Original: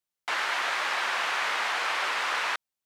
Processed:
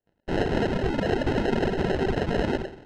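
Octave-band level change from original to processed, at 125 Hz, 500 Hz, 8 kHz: no reading, +15.0 dB, under -10 dB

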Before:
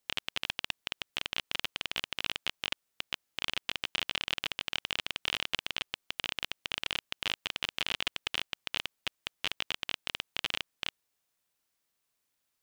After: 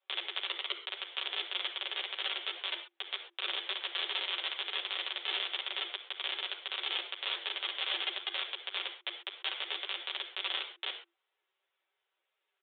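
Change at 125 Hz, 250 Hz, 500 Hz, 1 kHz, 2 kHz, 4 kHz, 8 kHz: under -40 dB, -7.5 dB, 0.0 dB, 0.0 dB, -2.0 dB, +0.5 dB, under -35 dB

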